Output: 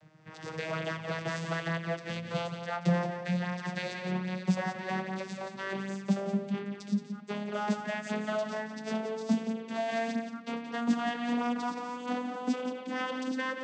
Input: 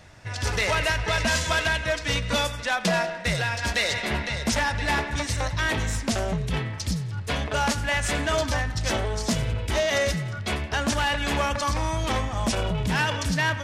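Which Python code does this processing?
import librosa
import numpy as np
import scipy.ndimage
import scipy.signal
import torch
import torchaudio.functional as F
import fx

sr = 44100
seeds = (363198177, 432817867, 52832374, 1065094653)

y = fx.vocoder_glide(x, sr, note=51, semitones=9)
y = y + 10.0 ** (-9.0 / 20.0) * np.pad(y, (int(175 * sr / 1000.0), 0))[:len(y)]
y = F.gain(torch.from_numpy(y), -6.5).numpy()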